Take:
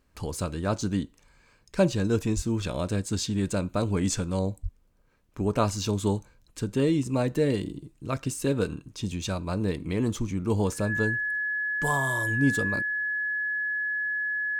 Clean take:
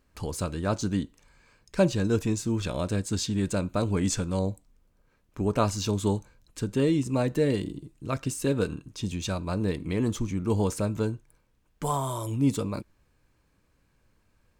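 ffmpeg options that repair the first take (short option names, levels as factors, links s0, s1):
-filter_complex "[0:a]bandreject=f=1700:w=30,asplit=3[s0][s1][s2];[s0]afade=t=out:st=2.35:d=0.02[s3];[s1]highpass=f=140:w=0.5412,highpass=f=140:w=1.3066,afade=t=in:st=2.35:d=0.02,afade=t=out:st=2.47:d=0.02[s4];[s2]afade=t=in:st=2.47:d=0.02[s5];[s3][s4][s5]amix=inputs=3:normalize=0,asplit=3[s6][s7][s8];[s6]afade=t=out:st=4.62:d=0.02[s9];[s7]highpass=f=140:w=0.5412,highpass=f=140:w=1.3066,afade=t=in:st=4.62:d=0.02,afade=t=out:st=4.74:d=0.02[s10];[s8]afade=t=in:st=4.74:d=0.02[s11];[s9][s10][s11]amix=inputs=3:normalize=0"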